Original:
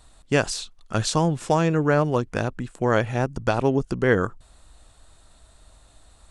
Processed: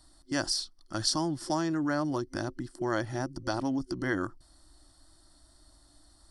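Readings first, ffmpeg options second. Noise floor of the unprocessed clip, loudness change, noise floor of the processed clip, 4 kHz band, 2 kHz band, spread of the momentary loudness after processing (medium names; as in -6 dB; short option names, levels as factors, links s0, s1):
-55 dBFS, -8.5 dB, -61 dBFS, -0.5 dB, -9.0 dB, 7 LU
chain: -filter_complex "[0:a]superequalizer=6b=3.55:7b=0.316:12b=0.316:14b=3.55:16b=2.24,acrossover=split=600|1500[s0][s1][s2];[s0]alimiter=limit=0.141:level=0:latency=1[s3];[s3][s1][s2]amix=inputs=3:normalize=0,volume=0.376"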